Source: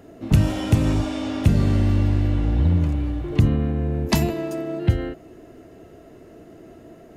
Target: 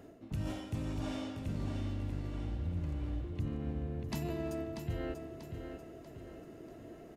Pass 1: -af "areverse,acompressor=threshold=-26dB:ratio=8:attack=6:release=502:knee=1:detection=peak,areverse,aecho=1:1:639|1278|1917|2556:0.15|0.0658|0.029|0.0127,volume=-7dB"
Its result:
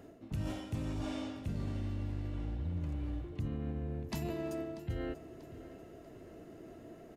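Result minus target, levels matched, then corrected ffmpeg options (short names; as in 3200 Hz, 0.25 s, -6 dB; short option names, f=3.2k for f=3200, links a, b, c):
echo-to-direct -9 dB
-af "areverse,acompressor=threshold=-26dB:ratio=8:attack=6:release=502:knee=1:detection=peak,areverse,aecho=1:1:639|1278|1917|2556|3195:0.422|0.186|0.0816|0.0359|0.0158,volume=-7dB"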